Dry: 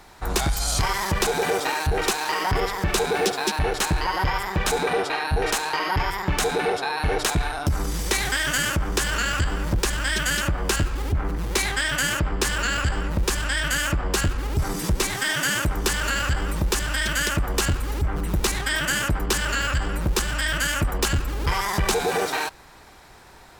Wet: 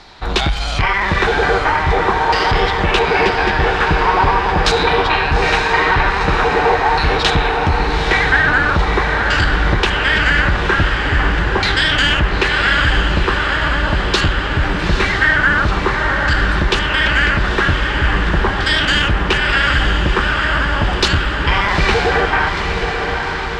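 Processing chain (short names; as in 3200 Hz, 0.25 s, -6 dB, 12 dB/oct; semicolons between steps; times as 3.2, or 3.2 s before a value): LFO low-pass saw down 0.43 Hz 880–4500 Hz; diffused feedback echo 0.889 s, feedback 65%, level -5 dB; gain +6 dB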